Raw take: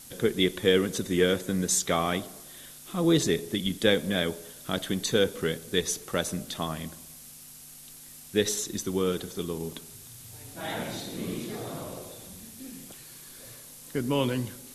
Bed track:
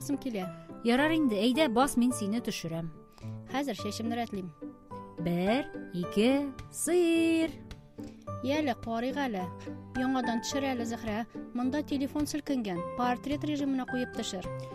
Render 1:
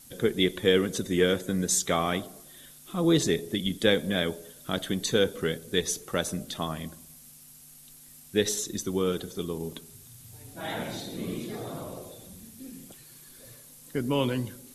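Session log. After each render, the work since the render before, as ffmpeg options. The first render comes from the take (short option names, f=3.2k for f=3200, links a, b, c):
-af "afftdn=nr=6:nf=-48"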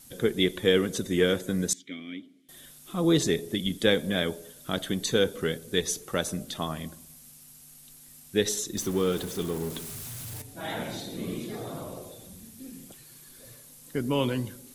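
-filter_complex "[0:a]asettb=1/sr,asplit=3[a][b][c];[a]atrim=end=1.734[d];[b]atrim=start=1.73:end=2.49,asetpts=PTS-STARTPTS,afade=t=in:d=0.004:c=qsin,afade=t=out:st=0.756:d=0.004:c=qsin,asplit=3[e][f][g];[e]bandpass=f=270:t=q:w=8,volume=0dB[h];[f]bandpass=f=2.29k:t=q:w=8,volume=-6dB[i];[g]bandpass=f=3.01k:t=q:w=8,volume=-9dB[j];[h][i][j]amix=inputs=3:normalize=0[k];[c]atrim=start=2.486[l];[d][k]acrossfade=d=0.004:c1=hsin:c2=qsin[m];[m][l]acrossfade=d=0.004:c1=qsin:c2=hsin,asettb=1/sr,asplit=3[n][o][p];[n]atrim=end=8.774[q];[o]atrim=start=8.77:end=10.42,asetpts=PTS-STARTPTS,afade=t=in:d=0.004:c=qsin,afade=t=out:st=1.646:d=0.004:c=qsin,aeval=exprs='val(0)+0.5*0.0168*sgn(val(0))':c=same[r];[p]atrim=start=10.416[s];[q][r]acrossfade=d=0.004:c1=hsin:c2=qsin[t];[t][s]acrossfade=d=0.004:c1=qsin:c2=hsin"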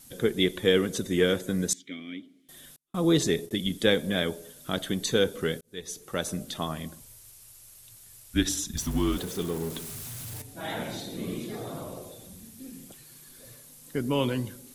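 -filter_complex "[0:a]asettb=1/sr,asplit=3[a][b][c];[a]atrim=end=2.764[d];[b]atrim=start=2.76:end=3.51,asetpts=PTS-STARTPTS,afade=t=in:d=0.004:c=qsin,afade=t=out:st=0.746:d=0.004:c=qsin,agate=range=-39dB:threshold=-40dB:ratio=16:release=100:detection=peak[e];[c]atrim=start=3.506[f];[d][e]acrossfade=d=0.004:c1=hsin:c2=qsin[g];[g][f]acrossfade=d=0.004:c1=qsin:c2=hsin,asettb=1/sr,asplit=3[h][i][j];[h]atrim=end=7.004[k];[i]atrim=start=7:end=9.18,asetpts=PTS-STARTPTS,afade=t=in:d=0.004:c=qsin,afade=t=out:st=2.176:d=0.004:c=qsin,afreqshift=-130[l];[j]atrim=start=9.176[m];[k][l]acrossfade=d=0.004:c1=hsin:c2=qsin[n];[n][m]acrossfade=d=0.004:c1=qsin:c2=hsin,asplit=2[o][p];[o]atrim=end=5.61,asetpts=PTS-STARTPTS,afade=t=out:st=5.606:d=0.004:c=hsin[q];[p]atrim=start=5.61,asetpts=PTS-STARTPTS,afade=t=in:d=0.73[r];[q][r]concat=n=2:v=0:a=1"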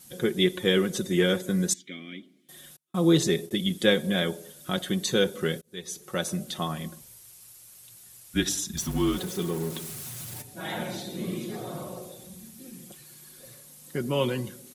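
-af "highpass=64,aecho=1:1:5.5:0.53"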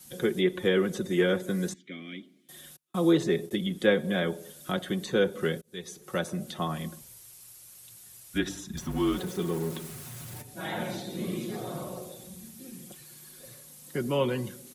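-filter_complex "[0:a]acrossover=split=240|450|2400[a][b][c][d];[a]alimiter=level_in=6.5dB:limit=-24dB:level=0:latency=1,volume=-6.5dB[e];[d]acompressor=threshold=-43dB:ratio=5[f];[e][b][c][f]amix=inputs=4:normalize=0"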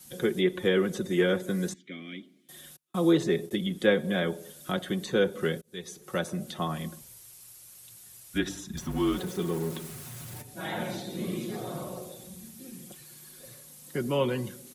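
-af anull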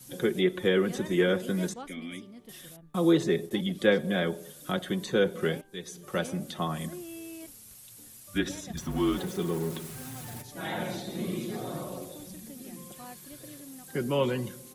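-filter_complex "[1:a]volume=-17dB[a];[0:a][a]amix=inputs=2:normalize=0"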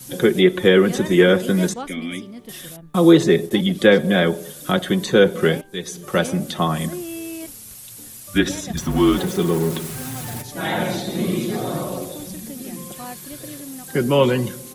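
-af "volume=11dB,alimiter=limit=-1dB:level=0:latency=1"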